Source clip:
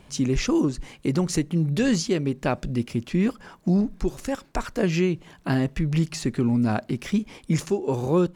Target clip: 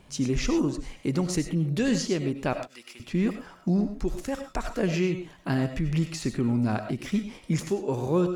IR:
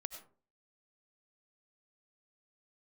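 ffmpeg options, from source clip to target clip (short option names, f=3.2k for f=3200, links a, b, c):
-filter_complex "[0:a]asettb=1/sr,asplit=3[a][b][c];[a]atrim=end=2.534[d];[b]atrim=start=2.53:end=3,asetpts=PTS-STARTPTS,afade=t=in:d=0.004:c=qsin,afade=t=out:st=0.466:d=0.004:c=qsin,highpass=1.1k[e];[c]atrim=start=2.996[f];[d][e]acrossfade=d=0.004:c1=hsin:c2=qsin[g];[g][f]acrossfade=d=0.004:c1=qsin:c2=hsin[h];[1:a]atrim=start_sample=2205,atrim=end_sample=6174[i];[h][i]afir=irnorm=-1:irlink=0"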